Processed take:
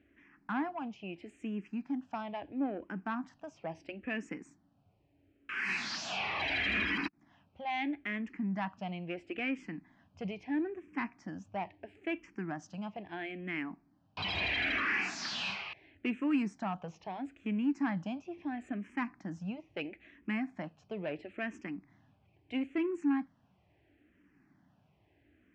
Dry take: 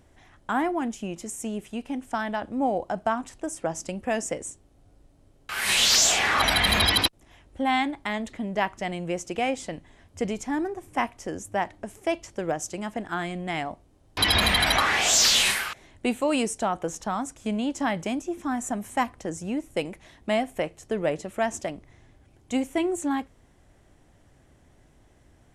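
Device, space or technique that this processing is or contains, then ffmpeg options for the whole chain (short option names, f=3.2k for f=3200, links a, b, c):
barber-pole phaser into a guitar amplifier: -filter_complex "[0:a]asplit=2[a][b];[b]afreqshift=-0.75[c];[a][c]amix=inputs=2:normalize=1,asoftclip=type=tanh:threshold=-21.5dB,highpass=91,equalizer=f=190:t=q:w=4:g=7,equalizer=f=290:t=q:w=4:g=8,equalizer=f=510:t=q:w=4:g=-6,equalizer=f=1.7k:t=q:w=4:g=4,equalizer=f=2.5k:t=q:w=4:g=8,equalizer=f=3.7k:t=q:w=4:g=-7,lowpass=f=4.4k:w=0.5412,lowpass=f=4.4k:w=1.3066,volume=-7.5dB"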